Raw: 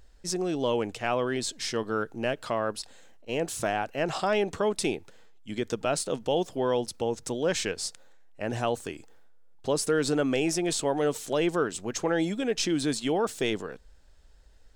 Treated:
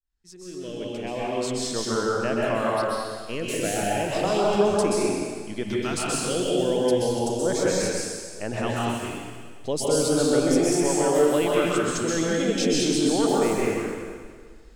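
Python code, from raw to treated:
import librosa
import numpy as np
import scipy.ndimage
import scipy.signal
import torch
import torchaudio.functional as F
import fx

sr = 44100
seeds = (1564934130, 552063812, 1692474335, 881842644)

y = fx.fade_in_head(x, sr, length_s=1.94)
y = fx.filter_lfo_notch(y, sr, shape='saw_up', hz=0.35, low_hz=470.0, high_hz=7400.0, q=0.99)
y = fx.rev_plate(y, sr, seeds[0], rt60_s=1.7, hf_ratio=1.0, predelay_ms=115, drr_db=-5.5)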